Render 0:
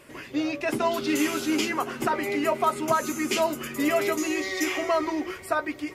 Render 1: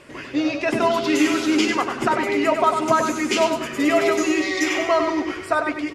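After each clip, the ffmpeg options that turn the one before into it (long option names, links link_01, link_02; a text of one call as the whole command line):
ffmpeg -i in.wav -filter_complex "[0:a]lowpass=7100,asplit=2[link_01][link_02];[link_02]aecho=0:1:97|194|291|388:0.473|0.151|0.0485|0.0155[link_03];[link_01][link_03]amix=inputs=2:normalize=0,volume=5dB" out.wav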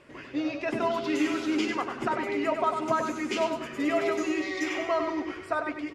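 ffmpeg -i in.wav -af "highshelf=frequency=5000:gain=-8.5,volume=-8dB" out.wav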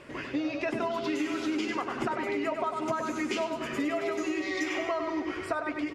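ffmpeg -i in.wav -af "acompressor=threshold=-34dB:ratio=6,volume=6dB" out.wav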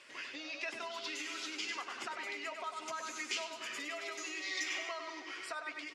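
ffmpeg -i in.wav -af "bandpass=frequency=5400:width_type=q:width=0.79:csg=0,volume=2.5dB" out.wav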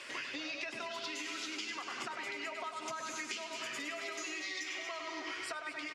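ffmpeg -i in.wav -filter_complex "[0:a]aecho=1:1:228|233:0.133|0.266,acrossover=split=190[link_01][link_02];[link_02]acompressor=threshold=-48dB:ratio=10[link_03];[link_01][link_03]amix=inputs=2:normalize=0,volume=10dB" out.wav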